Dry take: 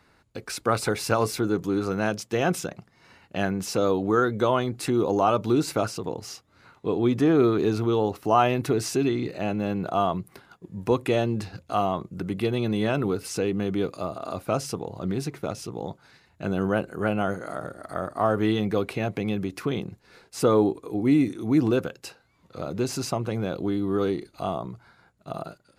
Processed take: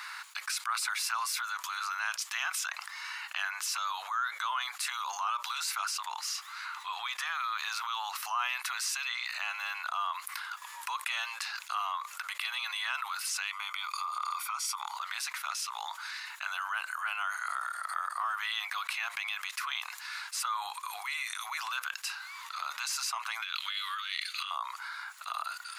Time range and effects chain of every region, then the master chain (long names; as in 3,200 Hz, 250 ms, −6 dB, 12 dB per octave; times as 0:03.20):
0:13.51–0:14.96: downward compressor, threshold −29 dBFS + comb filter 0.9 ms, depth 89%
0:23.42–0:24.51: high-pass filter 1,300 Hz 24 dB per octave + parametric band 3,000 Hz +11 dB 1.3 octaves + compressor whose output falls as the input rises −41 dBFS, ratio −0.5
whole clip: Butterworth high-pass 1,000 Hz 48 dB per octave; envelope flattener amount 70%; level −8.5 dB